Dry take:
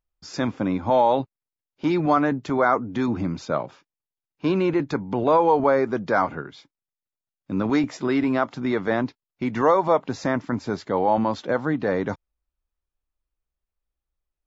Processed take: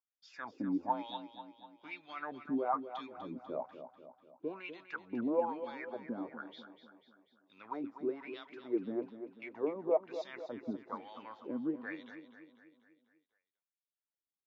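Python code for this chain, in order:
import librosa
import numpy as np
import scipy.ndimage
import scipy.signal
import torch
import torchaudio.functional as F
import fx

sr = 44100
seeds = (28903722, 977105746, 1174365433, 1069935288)

y = fx.wah_lfo(x, sr, hz=1.1, low_hz=240.0, high_hz=3600.0, q=6.4)
y = fx.echo_feedback(y, sr, ms=246, feedback_pct=52, wet_db=-11.0)
y = F.gain(torch.from_numpy(y), -4.0).numpy()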